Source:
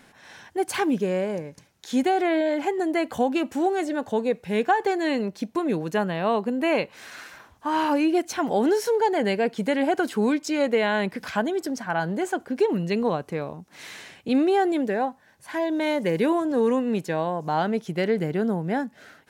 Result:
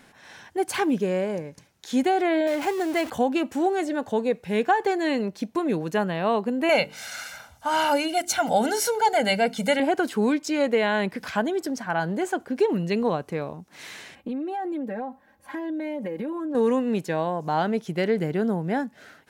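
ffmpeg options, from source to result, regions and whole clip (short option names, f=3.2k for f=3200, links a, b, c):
-filter_complex "[0:a]asettb=1/sr,asplit=3[a][b][c];[a]atrim=end=2.474[d];[b]atrim=start=2.47:end=3.1,asetpts=PTS-STARTPTS,afade=t=in:d=0.004:c=qsin,afade=t=out:st=0.626:d=0.004:c=qsin,aeval=exprs='val(0)+0.5*0.0316*sgn(val(0))':c=same,highpass=49,equalizer=f=220:t=o:w=1.9:g=-4.5[e];[c]atrim=start=3.096[f];[d][e]acrossfade=d=0.004:c1=hsin:c2=qsin[g];[g][f]acrossfade=d=0.004:c1=qsin:c2=hsin,asettb=1/sr,asplit=3[h][i][j];[h]atrim=end=6.694[k];[i]atrim=start=6.69:end=9.8,asetpts=PTS-STARTPTS,afade=t=in:d=0.004:c=qsin,afade=t=out:st=3.106:d=0.004:c=qsin,equalizer=f=9.5k:t=o:w=2.6:g=8,bandreject=f=50:t=h:w=6,bandreject=f=100:t=h:w=6,bandreject=f=150:t=h:w=6,bandreject=f=200:t=h:w=6,bandreject=f=250:t=h:w=6,bandreject=f=300:t=h:w=6,bandreject=f=350:t=h:w=6,bandreject=f=400:t=h:w=6,bandreject=f=450:t=h:w=6,aecho=1:1:1.4:0.76,atrim=end_sample=137151[l];[j]atrim=start=9.796[m];[k][l]acrossfade=d=0.004:c1=hsin:c2=qsin[n];[n][m]acrossfade=d=0.004:c1=qsin:c2=hsin,asettb=1/sr,asplit=3[o][p][q];[o]atrim=end=14.154[r];[p]atrim=start=14.15:end=16.55,asetpts=PTS-STARTPTS,afade=t=in:d=0.004:c=qsin,afade=t=out:st=2.396:d=0.004:c=qsin,equalizer=f=6.4k:w=0.37:g=-13.5,aecho=1:1:3.7:0.86,atrim=end_sample=105840,acompressor=threshold=-27dB:ratio=10:attack=3.2:release=140:knee=1:detection=peak[s];[q]atrim=start=16.546[t];[r][s]acrossfade=d=0.004:c1=hsin:c2=qsin[u];[u][t]acrossfade=d=0.004:c1=qsin:c2=hsin"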